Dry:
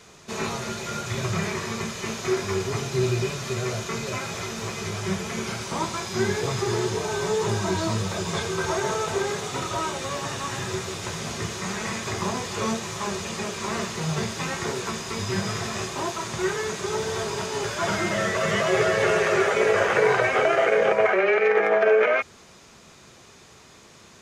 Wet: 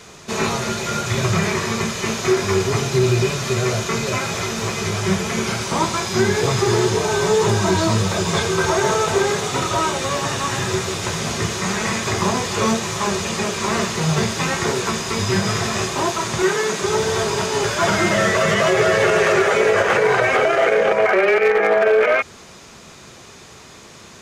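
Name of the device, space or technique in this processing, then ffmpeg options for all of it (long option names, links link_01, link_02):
limiter into clipper: -filter_complex "[0:a]alimiter=limit=-14.5dB:level=0:latency=1:release=105,asoftclip=type=hard:threshold=-17dB,asettb=1/sr,asplit=3[link_01][link_02][link_03];[link_01]atrim=end=16.424[link_04];[link_02]atrim=start=16.42:end=16.83,asetpts=PTS-STARTPTS,afade=type=in:duration=0.004:curve=qsin,afade=type=out:start_time=0.406:duration=0.004:curve=qsin,highpass=frequency=150:width=0.5412,highpass=frequency=150:width=1.3066[link_05];[link_03]atrim=start=16.826[link_06];[link_04][link_05]acrossfade=duration=0.004:curve1=hsin:curve2=qsin[link_07];[link_07][link_06]acrossfade=duration=0.004:curve1=qsin:curve2=hsin,volume=8dB"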